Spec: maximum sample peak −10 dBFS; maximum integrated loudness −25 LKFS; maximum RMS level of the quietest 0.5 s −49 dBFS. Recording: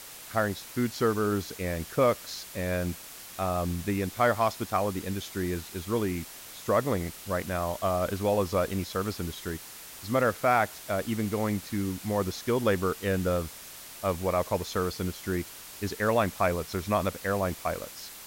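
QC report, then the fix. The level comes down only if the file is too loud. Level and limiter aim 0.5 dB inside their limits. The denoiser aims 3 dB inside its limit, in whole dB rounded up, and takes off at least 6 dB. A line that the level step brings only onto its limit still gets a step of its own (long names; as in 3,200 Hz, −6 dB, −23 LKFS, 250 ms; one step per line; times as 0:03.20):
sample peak −11.0 dBFS: in spec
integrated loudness −29.5 LKFS: in spec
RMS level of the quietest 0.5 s −45 dBFS: out of spec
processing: broadband denoise 7 dB, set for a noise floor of −45 dBFS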